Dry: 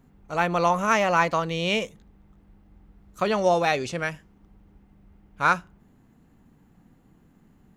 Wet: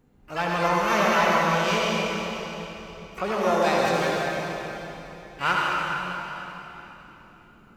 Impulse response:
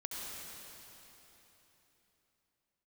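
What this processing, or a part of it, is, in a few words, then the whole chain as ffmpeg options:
shimmer-style reverb: -filter_complex "[0:a]asettb=1/sr,asplit=3[s0][s1][s2];[s0]atrim=end=1.784[s3];[s1]atrim=start=1.78:end=3.34,asetpts=PTS-STARTPTS,afade=t=in:d=0.004:c=qsin,afade=t=out:st=1.556:d=0.004:c=qsin,acrossover=split=2700[s4][s5];[s5]acompressor=threshold=0.00562:ratio=4:attack=1:release=60[s6];[s4][s6]amix=inputs=2:normalize=0[s7];[s2]atrim=start=3.336[s8];[s3][s7]acrossfade=d=0.004:c1=hsin:c2=qsin[s9];[s9][s8]acrossfade=d=0.004:c1=qsin:c2=hsin,asplit=2[s10][s11];[s11]asetrate=88200,aresample=44100,atempo=0.5,volume=0.355[s12];[s10][s12]amix=inputs=2:normalize=0[s13];[1:a]atrim=start_sample=2205[s14];[s13][s14]afir=irnorm=-1:irlink=0"

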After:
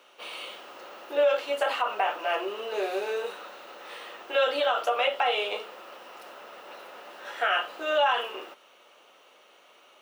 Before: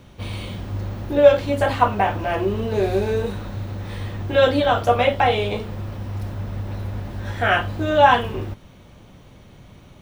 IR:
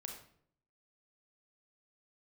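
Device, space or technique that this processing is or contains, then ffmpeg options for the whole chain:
laptop speaker: -af "highpass=f=450:w=0.5412,highpass=f=450:w=1.3066,equalizer=f=1300:t=o:w=0.27:g=7.5,equalizer=f=2800:t=o:w=0.2:g=10,alimiter=limit=0.299:level=0:latency=1:release=78,volume=0.596"

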